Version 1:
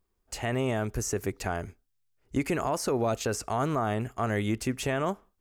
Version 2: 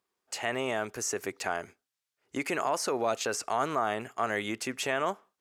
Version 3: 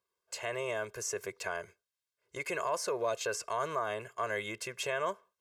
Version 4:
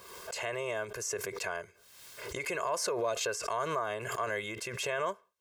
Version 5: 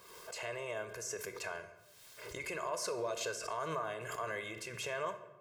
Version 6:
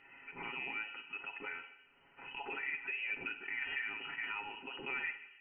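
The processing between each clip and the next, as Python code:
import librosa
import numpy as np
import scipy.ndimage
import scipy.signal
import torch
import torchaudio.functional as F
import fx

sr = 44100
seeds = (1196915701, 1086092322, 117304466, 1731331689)

y1 = fx.weighting(x, sr, curve='A')
y1 = y1 * 10.0 ** (1.5 / 20.0)
y2 = y1 + 0.97 * np.pad(y1, (int(1.9 * sr / 1000.0), 0))[:len(y1)]
y2 = y2 * 10.0 ** (-7.0 / 20.0)
y3 = fx.pre_swell(y2, sr, db_per_s=46.0)
y4 = fx.room_shoebox(y3, sr, seeds[0], volume_m3=500.0, walls='mixed', distance_m=0.52)
y4 = y4 * 10.0 ** (-6.0 / 20.0)
y5 = fx.freq_invert(y4, sr, carrier_hz=3000)
y5 = y5 + 0.53 * np.pad(y5, (int(7.3 * sr / 1000.0), 0))[:len(y5)]
y5 = y5 * 10.0 ** (-2.5 / 20.0)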